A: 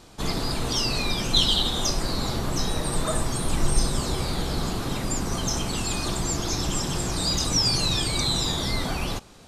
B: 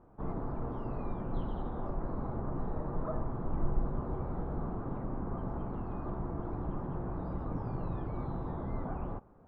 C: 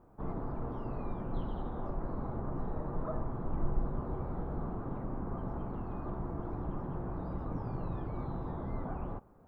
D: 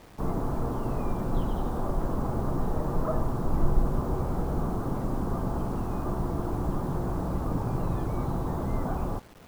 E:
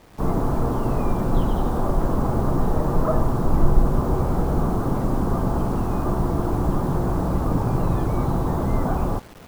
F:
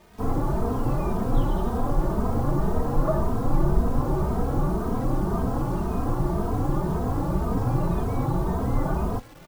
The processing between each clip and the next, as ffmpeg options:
-af "lowpass=f=1200:w=0.5412,lowpass=f=1200:w=1.3066,volume=0.376"
-af "crystalizer=i=1:c=0,volume=0.891"
-af "acrusher=bits=9:mix=0:aa=0.000001,volume=2.66"
-af "dynaudnorm=f=110:g=3:m=2.37"
-filter_complex "[0:a]asplit=2[s0][s1];[s1]adelay=2.9,afreqshift=1.9[s2];[s0][s2]amix=inputs=2:normalize=1"

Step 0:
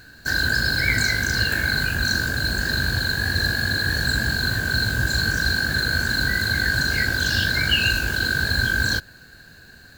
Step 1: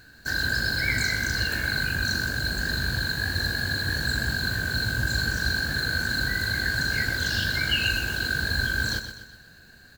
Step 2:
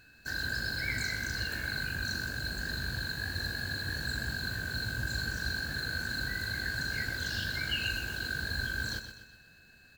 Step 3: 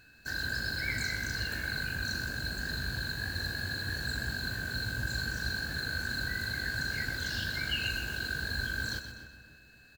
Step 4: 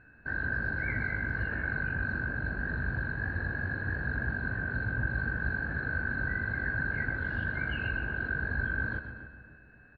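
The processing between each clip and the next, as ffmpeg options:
-af "aecho=1:1:125|250|375|500|625:0.335|0.151|0.0678|0.0305|0.0137,volume=0.562"
-af "aeval=exprs='val(0)+0.00224*sin(2*PI*2600*n/s)':c=same,volume=0.376"
-filter_complex "[0:a]asplit=2[s0][s1];[s1]adelay=283,lowpass=f=1600:p=1,volume=0.266,asplit=2[s2][s3];[s3]adelay=283,lowpass=f=1600:p=1,volume=0.42,asplit=2[s4][s5];[s5]adelay=283,lowpass=f=1600:p=1,volume=0.42,asplit=2[s6][s7];[s7]adelay=283,lowpass=f=1600:p=1,volume=0.42[s8];[s0][s2][s4][s6][s8]amix=inputs=5:normalize=0"
-af "lowpass=f=1800:w=0.5412,lowpass=f=1800:w=1.3066,volume=1.58"

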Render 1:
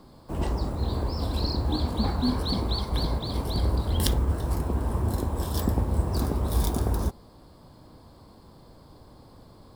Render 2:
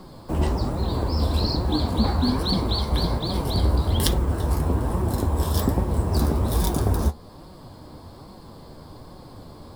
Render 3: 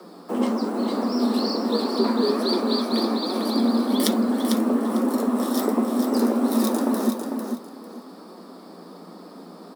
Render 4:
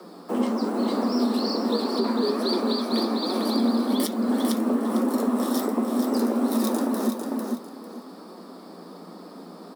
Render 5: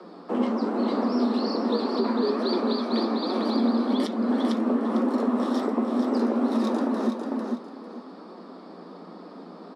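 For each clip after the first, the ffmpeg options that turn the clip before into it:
-filter_complex "[0:a]asplit=2[s0][s1];[s1]acompressor=threshold=0.02:ratio=6,volume=0.891[s2];[s0][s2]amix=inputs=2:normalize=0,flanger=delay=5.3:depth=8.4:regen=46:speed=1.2:shape=sinusoidal,volume=2.11"
-af "afreqshift=170,aecho=1:1:449|898|1347:0.501|0.105|0.0221,volume=0.891"
-af "alimiter=limit=0.211:level=0:latency=1:release=260"
-af "highpass=150,lowpass=3700"

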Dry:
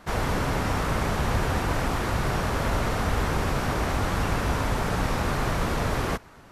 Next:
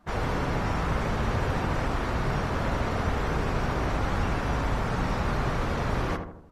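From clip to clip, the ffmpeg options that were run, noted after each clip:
-filter_complex "[0:a]afftdn=nr=14:nf=-44,asplit=2[s0][s1];[s1]adelay=78,lowpass=f=1200:p=1,volume=0.562,asplit=2[s2][s3];[s3]adelay=78,lowpass=f=1200:p=1,volume=0.52,asplit=2[s4][s5];[s5]adelay=78,lowpass=f=1200:p=1,volume=0.52,asplit=2[s6][s7];[s7]adelay=78,lowpass=f=1200:p=1,volume=0.52,asplit=2[s8][s9];[s9]adelay=78,lowpass=f=1200:p=1,volume=0.52,asplit=2[s10][s11];[s11]adelay=78,lowpass=f=1200:p=1,volume=0.52,asplit=2[s12][s13];[s13]adelay=78,lowpass=f=1200:p=1,volume=0.52[s14];[s0][s2][s4][s6][s8][s10][s12][s14]amix=inputs=8:normalize=0,volume=0.708"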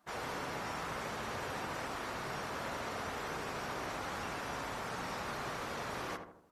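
-af "highpass=f=460:p=1,highshelf=f=5700:g=10,volume=0.398"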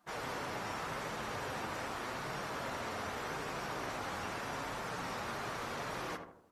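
-af "flanger=delay=5.6:depth=4.5:regen=-53:speed=0.83:shape=triangular,volume=1.58"

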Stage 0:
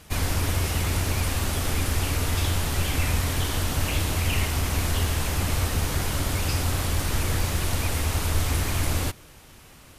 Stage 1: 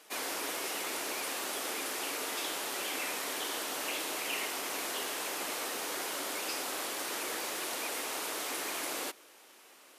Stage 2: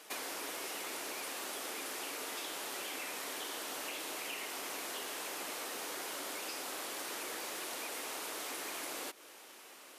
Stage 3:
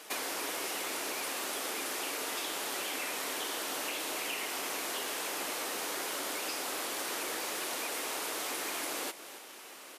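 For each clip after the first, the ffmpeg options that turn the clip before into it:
-af "highpass=f=330:w=0.5412,highpass=f=330:w=1.3066,volume=0.531"
-af "acompressor=threshold=0.00794:ratio=6,volume=1.41"
-af "aecho=1:1:275:0.2,volume=1.78"

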